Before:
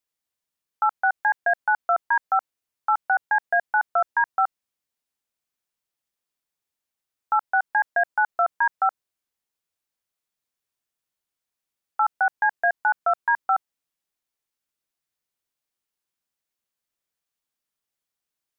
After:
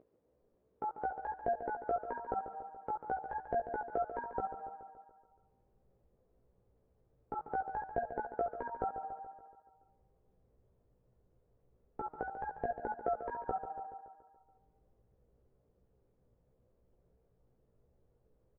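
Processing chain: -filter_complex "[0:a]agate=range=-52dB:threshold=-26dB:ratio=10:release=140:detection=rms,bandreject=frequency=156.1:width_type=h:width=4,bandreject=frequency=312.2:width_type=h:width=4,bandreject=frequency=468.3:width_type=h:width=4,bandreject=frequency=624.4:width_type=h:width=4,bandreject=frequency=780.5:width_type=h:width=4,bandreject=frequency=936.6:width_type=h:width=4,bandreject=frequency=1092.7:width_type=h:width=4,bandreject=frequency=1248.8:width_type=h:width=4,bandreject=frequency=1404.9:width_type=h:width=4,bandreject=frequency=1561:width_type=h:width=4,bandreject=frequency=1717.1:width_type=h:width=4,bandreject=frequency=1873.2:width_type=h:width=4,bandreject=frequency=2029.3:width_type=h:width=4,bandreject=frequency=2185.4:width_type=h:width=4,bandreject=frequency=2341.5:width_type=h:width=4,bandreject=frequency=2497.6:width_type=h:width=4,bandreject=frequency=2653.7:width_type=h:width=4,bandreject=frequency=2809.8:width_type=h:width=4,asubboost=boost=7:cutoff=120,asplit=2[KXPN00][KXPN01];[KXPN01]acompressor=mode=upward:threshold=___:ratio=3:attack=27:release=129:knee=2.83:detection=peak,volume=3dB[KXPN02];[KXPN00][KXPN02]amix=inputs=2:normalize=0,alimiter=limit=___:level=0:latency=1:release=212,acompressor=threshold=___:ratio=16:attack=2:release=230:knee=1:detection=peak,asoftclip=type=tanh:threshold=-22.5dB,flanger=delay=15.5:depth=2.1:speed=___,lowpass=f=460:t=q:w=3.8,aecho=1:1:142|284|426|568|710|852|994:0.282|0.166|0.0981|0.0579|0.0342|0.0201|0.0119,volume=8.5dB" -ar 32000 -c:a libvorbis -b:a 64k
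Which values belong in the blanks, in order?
-40dB, -8.5dB, -28dB, 2.9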